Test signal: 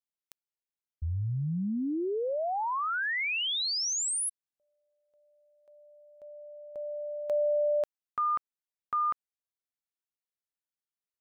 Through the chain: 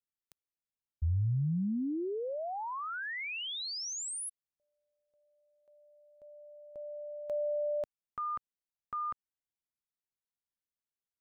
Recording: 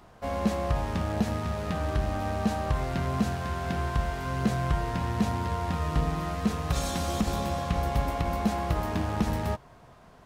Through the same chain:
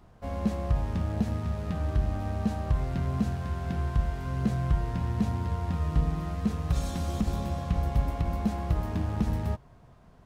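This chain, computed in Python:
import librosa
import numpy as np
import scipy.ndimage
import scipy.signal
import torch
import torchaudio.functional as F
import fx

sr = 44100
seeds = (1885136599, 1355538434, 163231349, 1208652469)

y = fx.low_shelf(x, sr, hz=270.0, db=11.0)
y = y * librosa.db_to_amplitude(-8.0)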